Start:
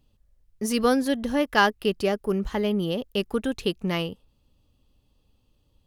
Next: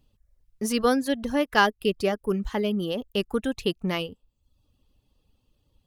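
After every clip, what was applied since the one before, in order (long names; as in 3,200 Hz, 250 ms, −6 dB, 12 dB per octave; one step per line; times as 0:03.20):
reverb reduction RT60 0.65 s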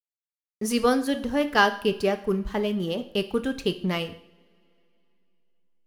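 slack as between gear wheels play −42.5 dBFS
coupled-rooms reverb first 0.54 s, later 3.1 s, from −26 dB, DRR 8 dB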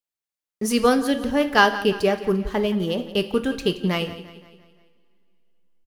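repeating echo 173 ms, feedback 50%, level −15.5 dB
level +3.5 dB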